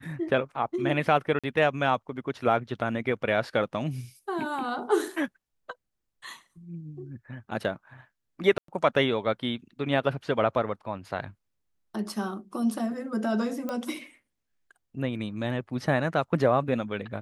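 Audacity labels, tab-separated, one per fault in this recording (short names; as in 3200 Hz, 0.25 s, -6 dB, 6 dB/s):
1.390000	1.440000	gap 46 ms
8.580000	8.680000	gap 0.103 s
13.690000	13.690000	pop -19 dBFS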